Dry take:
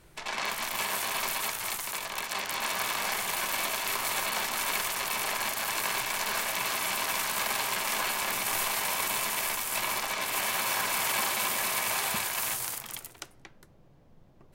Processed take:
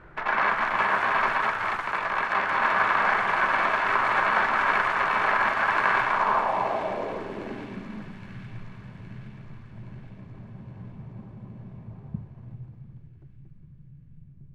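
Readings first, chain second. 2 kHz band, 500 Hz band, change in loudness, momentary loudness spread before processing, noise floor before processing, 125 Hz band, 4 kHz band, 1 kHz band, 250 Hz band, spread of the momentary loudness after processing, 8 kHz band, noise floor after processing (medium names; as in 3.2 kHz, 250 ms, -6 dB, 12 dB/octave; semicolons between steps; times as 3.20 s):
+6.0 dB, +6.5 dB, +5.0 dB, 5 LU, -57 dBFS, +11.0 dB, -9.0 dB, +8.5 dB, +7.0 dB, 21 LU, under -25 dB, -49 dBFS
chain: low-pass sweep 1.5 kHz -> 140 Hz, 6.01–8.30 s; feedback echo behind a high-pass 817 ms, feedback 57%, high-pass 3.1 kHz, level -8 dB; trim +7 dB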